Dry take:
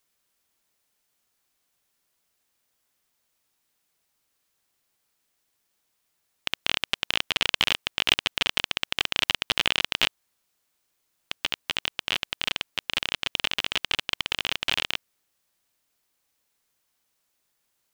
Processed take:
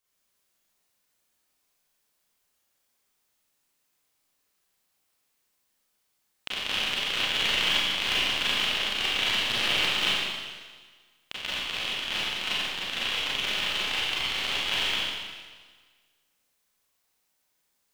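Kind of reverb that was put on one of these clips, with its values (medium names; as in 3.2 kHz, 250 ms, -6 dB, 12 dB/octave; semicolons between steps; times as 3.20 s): Schroeder reverb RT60 1.5 s, combs from 30 ms, DRR -9 dB; trim -9 dB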